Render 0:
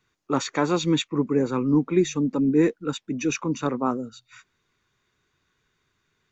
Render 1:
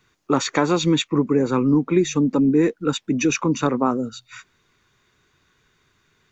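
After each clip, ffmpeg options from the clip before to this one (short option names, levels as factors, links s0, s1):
-af "acompressor=threshold=0.0562:ratio=2.5,volume=2.66"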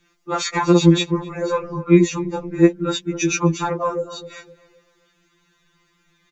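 -filter_complex "[0:a]asplit=2[s0][s1];[s1]adelay=258,lowpass=f=910:p=1,volume=0.224,asplit=2[s2][s3];[s3]adelay=258,lowpass=f=910:p=1,volume=0.41,asplit=2[s4][s5];[s5]adelay=258,lowpass=f=910:p=1,volume=0.41,asplit=2[s6][s7];[s7]adelay=258,lowpass=f=910:p=1,volume=0.41[s8];[s0][s2][s4][s6][s8]amix=inputs=5:normalize=0,afftfilt=real='re*2.83*eq(mod(b,8),0)':imag='im*2.83*eq(mod(b,8),0)':win_size=2048:overlap=0.75,volume=1.5"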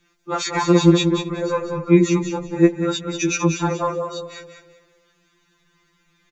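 -af "aecho=1:1:190|380|570:0.447|0.0938|0.0197,volume=0.891"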